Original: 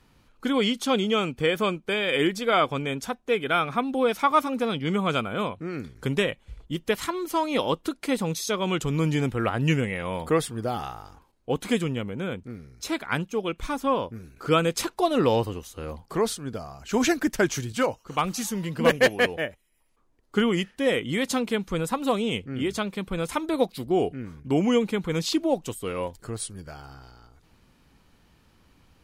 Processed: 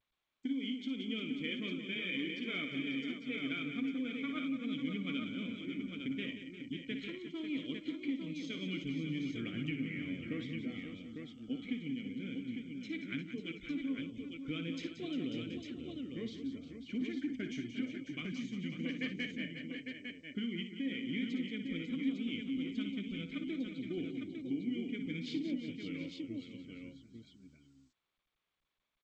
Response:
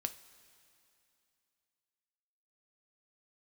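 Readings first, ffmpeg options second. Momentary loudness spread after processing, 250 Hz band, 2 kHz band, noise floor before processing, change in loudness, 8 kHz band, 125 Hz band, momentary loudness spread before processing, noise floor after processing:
7 LU, -9.0 dB, -13.0 dB, -62 dBFS, -13.5 dB, under -25 dB, -15.5 dB, 11 LU, -85 dBFS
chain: -filter_complex "[0:a]asplit=3[s0][s1][s2];[s0]bandpass=f=270:t=q:w=8,volume=1[s3];[s1]bandpass=f=2290:t=q:w=8,volume=0.501[s4];[s2]bandpass=f=3010:t=q:w=8,volume=0.355[s5];[s3][s4][s5]amix=inputs=3:normalize=0,agate=range=0.00126:threshold=0.001:ratio=16:detection=peak,asubboost=boost=2.5:cutoff=170,deesser=0.95,flanger=delay=3.1:depth=4.4:regen=-66:speed=0.18:shape=triangular,acompressor=threshold=0.0112:ratio=5,afftdn=nr=36:nf=-65,asplit=2[s6][s7];[s7]aecho=0:1:59|180|353|544|729|853:0.335|0.316|0.224|0.335|0.141|0.531[s8];[s6][s8]amix=inputs=2:normalize=0,volume=1.5" -ar 16000 -c:a g722

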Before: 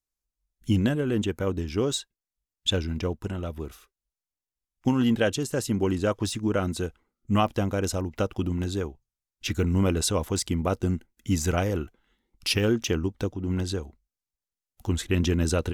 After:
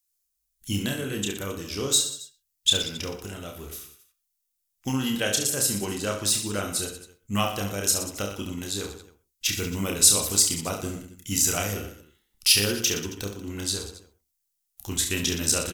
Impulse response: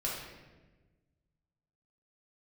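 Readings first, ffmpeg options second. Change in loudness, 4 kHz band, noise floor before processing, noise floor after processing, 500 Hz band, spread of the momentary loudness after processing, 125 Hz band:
+2.5 dB, +7.5 dB, under -85 dBFS, -78 dBFS, -4.5 dB, 19 LU, -6.5 dB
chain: -filter_complex "[0:a]aecho=1:1:30|69|119.7|185.6|271.3:0.631|0.398|0.251|0.158|0.1,crystalizer=i=8:c=0,asplit=2[s0][s1];[1:a]atrim=start_sample=2205,atrim=end_sample=6174[s2];[s1][s2]afir=irnorm=-1:irlink=0,volume=0.224[s3];[s0][s3]amix=inputs=2:normalize=0,volume=0.335"

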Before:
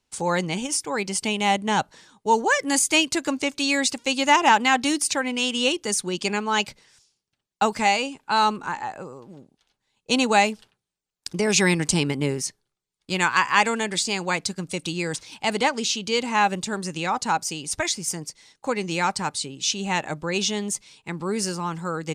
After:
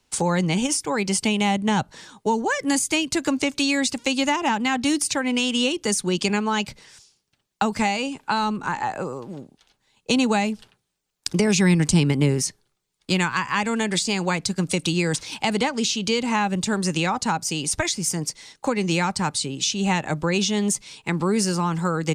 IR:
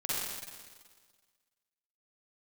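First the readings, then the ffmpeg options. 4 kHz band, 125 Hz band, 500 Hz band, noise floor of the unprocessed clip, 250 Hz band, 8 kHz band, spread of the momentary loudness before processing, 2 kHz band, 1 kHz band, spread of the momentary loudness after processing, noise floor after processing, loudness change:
0.0 dB, +7.0 dB, +0.5 dB, -82 dBFS, +5.0 dB, +0.5 dB, 11 LU, -2.0 dB, -3.0 dB, 6 LU, -74 dBFS, +0.5 dB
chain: -filter_complex "[0:a]acrossover=split=220[s0][s1];[s1]acompressor=threshold=0.0316:ratio=6[s2];[s0][s2]amix=inputs=2:normalize=0,volume=2.66"

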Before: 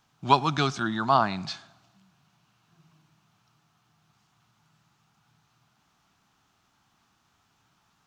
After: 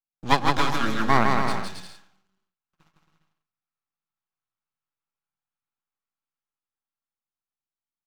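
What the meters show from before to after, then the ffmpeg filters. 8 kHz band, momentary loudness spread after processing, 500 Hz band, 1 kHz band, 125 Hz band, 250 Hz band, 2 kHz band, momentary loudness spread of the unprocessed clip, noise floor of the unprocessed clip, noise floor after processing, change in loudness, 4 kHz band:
+4.5 dB, 13 LU, +1.0 dB, +1.0 dB, +1.0 dB, +3.0 dB, +6.0 dB, 13 LU, -70 dBFS, under -85 dBFS, +2.0 dB, +1.5 dB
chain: -filter_complex "[0:a]agate=range=0.0141:threshold=0.00112:ratio=16:detection=peak,aecho=1:1:3.7:0.31,acrossover=split=180|840|2500[s0][s1][s2][s3];[s2]dynaudnorm=f=230:g=17:m=3.16[s4];[s0][s1][s4][s3]amix=inputs=4:normalize=0,aeval=exprs='max(val(0),0)':c=same,aecho=1:1:160|272|350.4|405.3|443.7:0.631|0.398|0.251|0.158|0.1,adynamicequalizer=threshold=0.0141:dfrequency=2300:dqfactor=0.7:tfrequency=2300:tqfactor=0.7:attack=5:release=100:ratio=0.375:range=2:mode=cutabove:tftype=highshelf,volume=1.58"

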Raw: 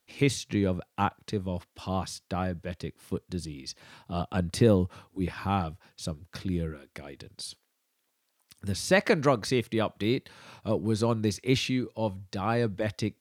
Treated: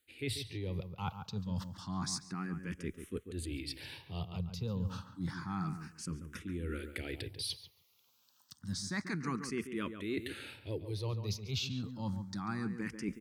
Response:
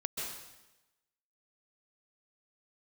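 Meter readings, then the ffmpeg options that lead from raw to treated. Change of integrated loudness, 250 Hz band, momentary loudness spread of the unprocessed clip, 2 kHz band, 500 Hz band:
-10.0 dB, -9.5 dB, 16 LU, -9.5 dB, -15.5 dB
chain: -filter_complex "[0:a]equalizer=f=650:t=o:w=0.83:g=-13,areverse,acompressor=threshold=0.00794:ratio=6,areverse,asplit=2[s0][s1];[s1]adelay=140,lowpass=f=1900:p=1,volume=0.376,asplit=2[s2][s3];[s3]adelay=140,lowpass=f=1900:p=1,volume=0.21,asplit=2[s4][s5];[s5]adelay=140,lowpass=f=1900:p=1,volume=0.21[s6];[s0][s2][s4][s6]amix=inputs=4:normalize=0,asplit=2[s7][s8];[s8]afreqshift=0.29[s9];[s7][s9]amix=inputs=2:normalize=1,volume=2.82"

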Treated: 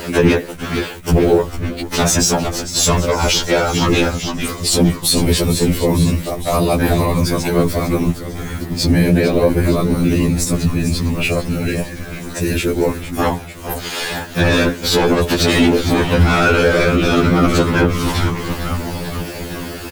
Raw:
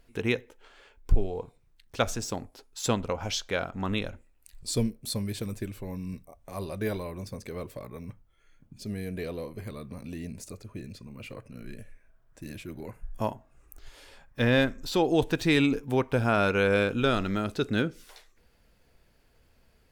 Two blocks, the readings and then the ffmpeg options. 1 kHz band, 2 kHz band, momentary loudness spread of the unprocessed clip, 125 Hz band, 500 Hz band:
+14.5 dB, +13.0 dB, 20 LU, +16.5 dB, +13.5 dB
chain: -filter_complex "[0:a]highpass=f=93:w=0.5412,highpass=f=93:w=1.3066,asplit=2[s0][s1];[s1]acompressor=mode=upward:threshold=0.0282:ratio=2.5,volume=1[s2];[s0][s2]amix=inputs=2:normalize=0,asoftclip=type=tanh:threshold=0.1,afftfilt=real='hypot(re,im)*cos(2*PI*random(0))':imag='hypot(re,im)*sin(2*PI*random(1))':win_size=512:overlap=0.75,acrusher=bits=9:mix=0:aa=0.000001,aphaser=in_gain=1:out_gain=1:delay=2.5:decay=0.28:speed=0.11:type=sinusoidal,asplit=8[s3][s4][s5][s6][s7][s8][s9][s10];[s4]adelay=452,afreqshift=-120,volume=0.251[s11];[s5]adelay=904,afreqshift=-240,volume=0.158[s12];[s6]adelay=1356,afreqshift=-360,volume=0.1[s13];[s7]adelay=1808,afreqshift=-480,volume=0.0631[s14];[s8]adelay=2260,afreqshift=-600,volume=0.0394[s15];[s9]adelay=2712,afreqshift=-720,volume=0.0248[s16];[s10]adelay=3164,afreqshift=-840,volume=0.0157[s17];[s3][s11][s12][s13][s14][s15][s16][s17]amix=inputs=8:normalize=0,alimiter=level_in=20:limit=0.891:release=50:level=0:latency=1,afftfilt=real='re*2*eq(mod(b,4),0)':imag='im*2*eq(mod(b,4),0)':win_size=2048:overlap=0.75,volume=0.841"

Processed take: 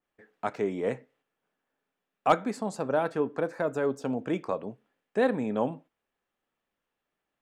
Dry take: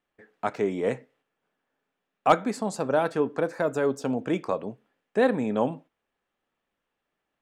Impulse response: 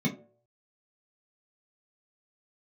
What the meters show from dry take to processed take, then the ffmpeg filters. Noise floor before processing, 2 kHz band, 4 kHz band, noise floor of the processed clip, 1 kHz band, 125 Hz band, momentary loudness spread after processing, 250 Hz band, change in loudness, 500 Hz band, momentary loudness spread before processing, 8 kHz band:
-83 dBFS, -3.0 dB, -4.0 dB, under -85 dBFS, -3.0 dB, -3.0 dB, 9 LU, -3.0 dB, -3.0 dB, -3.0 dB, 9 LU, -6.0 dB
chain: -af "adynamicequalizer=threshold=0.00631:dfrequency=2900:dqfactor=0.7:tfrequency=2900:tqfactor=0.7:attack=5:release=100:ratio=0.375:range=2.5:mode=cutabove:tftype=highshelf,volume=0.708"

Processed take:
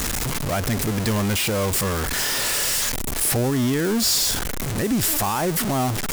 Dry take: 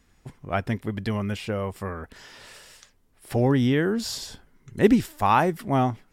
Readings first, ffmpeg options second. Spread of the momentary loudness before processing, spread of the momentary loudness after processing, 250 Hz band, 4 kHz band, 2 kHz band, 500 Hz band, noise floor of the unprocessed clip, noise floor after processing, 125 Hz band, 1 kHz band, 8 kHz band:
16 LU, 5 LU, +0.5 dB, +13.0 dB, +6.0 dB, +0.5 dB, -62 dBFS, -26 dBFS, +3.0 dB, -1.0 dB, +20.0 dB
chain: -filter_complex "[0:a]aeval=exprs='val(0)+0.5*0.0944*sgn(val(0))':c=same,acrossover=split=5500[s0][s1];[s0]alimiter=limit=0.178:level=0:latency=1:release=91[s2];[s1]acontrast=66[s3];[s2][s3]amix=inputs=2:normalize=0"

